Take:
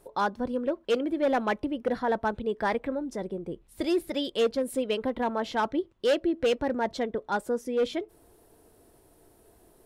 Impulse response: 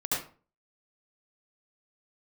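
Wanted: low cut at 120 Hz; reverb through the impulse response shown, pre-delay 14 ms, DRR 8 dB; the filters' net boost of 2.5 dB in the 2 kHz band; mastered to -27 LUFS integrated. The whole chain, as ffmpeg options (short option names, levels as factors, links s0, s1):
-filter_complex "[0:a]highpass=120,equalizer=f=2000:t=o:g=3.5,asplit=2[s0][s1];[1:a]atrim=start_sample=2205,adelay=14[s2];[s1][s2]afir=irnorm=-1:irlink=0,volume=0.158[s3];[s0][s3]amix=inputs=2:normalize=0,volume=1.12"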